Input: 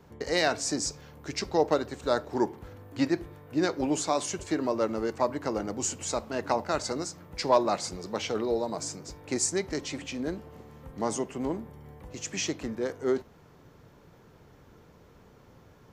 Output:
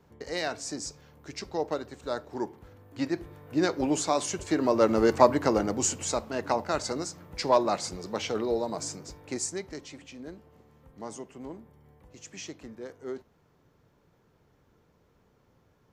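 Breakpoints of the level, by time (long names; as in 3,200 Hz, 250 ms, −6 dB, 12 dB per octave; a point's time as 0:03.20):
0:02.83 −6 dB
0:03.50 +1 dB
0:04.43 +1 dB
0:05.13 +9 dB
0:06.32 0 dB
0:08.96 0 dB
0:09.97 −10 dB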